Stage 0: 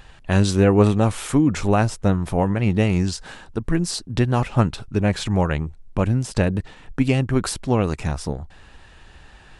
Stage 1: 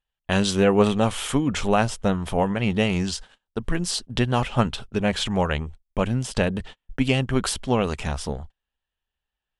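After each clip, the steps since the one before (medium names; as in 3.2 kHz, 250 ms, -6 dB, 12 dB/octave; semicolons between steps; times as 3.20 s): gate -34 dBFS, range -40 dB; graphic EQ with 31 bands 100 Hz -12 dB, 160 Hz -6 dB, 315 Hz -8 dB, 3.15 kHz +9 dB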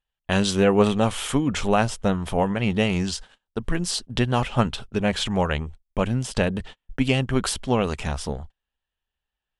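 no audible change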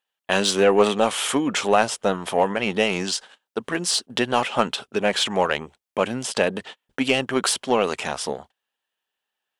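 high-pass 340 Hz 12 dB/octave; in parallel at -4.5 dB: saturation -21 dBFS, distortion -8 dB; on the sum: trim +1.5 dB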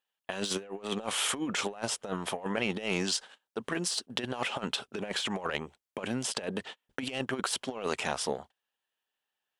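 compressor with a negative ratio -24 dBFS, ratio -0.5; trim -8 dB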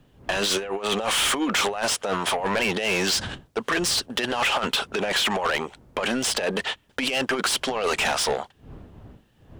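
wind noise 84 Hz -48 dBFS; overdrive pedal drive 27 dB, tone 6.1 kHz, clips at -11.5 dBFS; trim -2 dB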